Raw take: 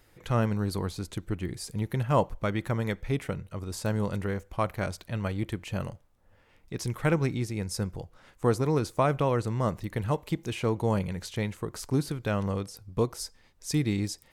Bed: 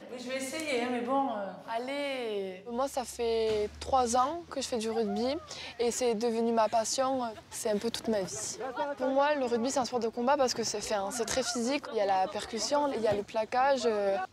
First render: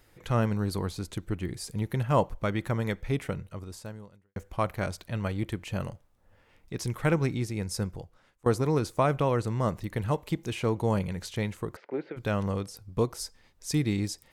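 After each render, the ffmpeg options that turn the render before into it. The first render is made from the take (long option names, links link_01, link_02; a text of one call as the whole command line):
ffmpeg -i in.wav -filter_complex "[0:a]asplit=3[link_01][link_02][link_03];[link_01]afade=type=out:start_time=11.75:duration=0.02[link_04];[link_02]highpass=frequency=260:width=0.5412,highpass=frequency=260:width=1.3066,equalizer=frequency=270:width_type=q:width=4:gain=-8,equalizer=frequency=540:width_type=q:width=4:gain=6,equalizer=frequency=1100:width_type=q:width=4:gain=-10,equalizer=frequency=2100:width_type=q:width=4:gain=5,lowpass=frequency=2400:width=0.5412,lowpass=frequency=2400:width=1.3066,afade=type=in:start_time=11.75:duration=0.02,afade=type=out:start_time=12.16:duration=0.02[link_05];[link_03]afade=type=in:start_time=12.16:duration=0.02[link_06];[link_04][link_05][link_06]amix=inputs=3:normalize=0,asplit=3[link_07][link_08][link_09];[link_07]atrim=end=4.36,asetpts=PTS-STARTPTS,afade=type=out:start_time=3.43:duration=0.93:curve=qua[link_10];[link_08]atrim=start=4.36:end=8.46,asetpts=PTS-STARTPTS,afade=type=in:duration=0.004:curve=hsin,afade=type=out:start_time=3.48:duration=0.62:silence=0.0707946[link_11];[link_09]atrim=start=8.46,asetpts=PTS-STARTPTS,afade=type=in:duration=0.004:curve=hsin:silence=0.0707946[link_12];[link_10][link_11][link_12]concat=n=3:v=0:a=1" out.wav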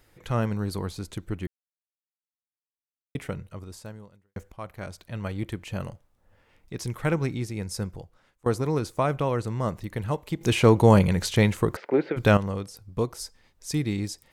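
ffmpeg -i in.wav -filter_complex "[0:a]asplit=6[link_01][link_02][link_03][link_04][link_05][link_06];[link_01]atrim=end=1.47,asetpts=PTS-STARTPTS,afade=type=out:start_time=1.466:duration=0.004:curve=hsin[link_07];[link_02]atrim=start=1.47:end=3.15,asetpts=PTS-STARTPTS,volume=0[link_08];[link_03]atrim=start=3.15:end=4.52,asetpts=PTS-STARTPTS,afade=type=in:duration=0.004:curve=hsin,afade=type=out:start_time=1.366:duration=0.004:curve=hsin:silence=0.223872[link_09];[link_04]atrim=start=4.52:end=10.412,asetpts=PTS-STARTPTS,afade=type=in:duration=0.89:silence=0.223872[link_10];[link_05]atrim=start=10.408:end=12.372,asetpts=PTS-STARTPTS,volume=10.5dB[link_11];[link_06]atrim=start=12.368[link_12];[link_07][link_08][link_09][link_10]concat=n=4:v=0:a=1[link_13];[link_13][link_11]acrossfade=duration=0.004:curve1=hsin:curve2=hsin[link_14];[link_14][link_12]acrossfade=duration=0.004:curve1=hsin:curve2=hsin" out.wav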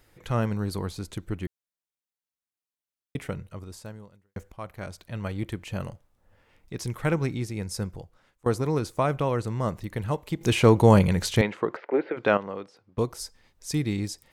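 ffmpeg -i in.wav -filter_complex "[0:a]asettb=1/sr,asplit=3[link_01][link_02][link_03];[link_01]atrim=end=11.414[link_04];[link_02]atrim=start=11.41:end=12.98,asetpts=PTS-STARTPTS,afade=type=in:duration=0.004:curve=qsin,afade=type=out:start_time=1.566:duration=0.004:curve=qsin,highpass=310,lowpass=2700[link_05];[link_03]atrim=start=12.976[link_06];[link_04][link_05]acrossfade=duration=0.004:curve1=hsin:curve2=qsin[link_07];[link_07][link_06]acrossfade=duration=0.004:curve1=qsin:curve2=hsin" out.wav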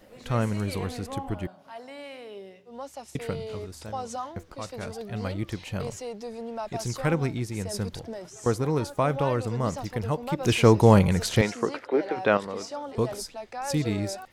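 ffmpeg -i in.wav -i bed.wav -filter_complex "[1:a]volume=-7.5dB[link_01];[0:a][link_01]amix=inputs=2:normalize=0" out.wav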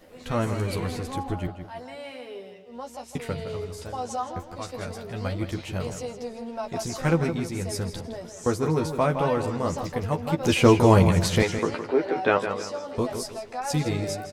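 ffmpeg -i in.wav -filter_complex "[0:a]asplit=2[link_01][link_02];[link_02]adelay=12,volume=-4dB[link_03];[link_01][link_03]amix=inputs=2:normalize=0,asplit=2[link_04][link_05];[link_05]adelay=162,lowpass=frequency=4800:poles=1,volume=-9dB,asplit=2[link_06][link_07];[link_07]adelay=162,lowpass=frequency=4800:poles=1,volume=0.36,asplit=2[link_08][link_09];[link_09]adelay=162,lowpass=frequency=4800:poles=1,volume=0.36,asplit=2[link_10][link_11];[link_11]adelay=162,lowpass=frequency=4800:poles=1,volume=0.36[link_12];[link_06][link_08][link_10][link_12]amix=inputs=4:normalize=0[link_13];[link_04][link_13]amix=inputs=2:normalize=0" out.wav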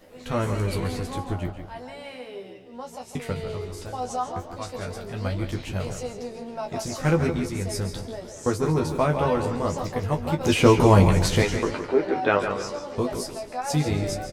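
ffmpeg -i in.wav -filter_complex "[0:a]asplit=2[link_01][link_02];[link_02]adelay=20,volume=-8.5dB[link_03];[link_01][link_03]amix=inputs=2:normalize=0,asplit=5[link_04][link_05][link_06][link_07][link_08];[link_05]adelay=139,afreqshift=-69,volume=-12.5dB[link_09];[link_06]adelay=278,afreqshift=-138,volume=-21.4dB[link_10];[link_07]adelay=417,afreqshift=-207,volume=-30.2dB[link_11];[link_08]adelay=556,afreqshift=-276,volume=-39.1dB[link_12];[link_04][link_09][link_10][link_11][link_12]amix=inputs=5:normalize=0" out.wav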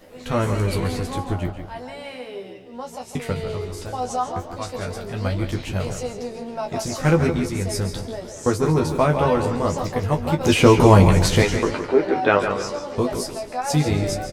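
ffmpeg -i in.wav -af "volume=4dB,alimiter=limit=-1dB:level=0:latency=1" out.wav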